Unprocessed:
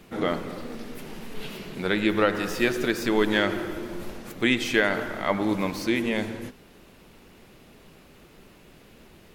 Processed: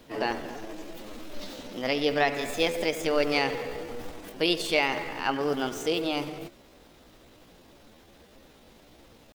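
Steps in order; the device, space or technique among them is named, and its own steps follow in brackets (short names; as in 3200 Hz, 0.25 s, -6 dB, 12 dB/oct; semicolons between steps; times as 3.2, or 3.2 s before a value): chipmunk voice (pitch shift +5.5 st); gain -2.5 dB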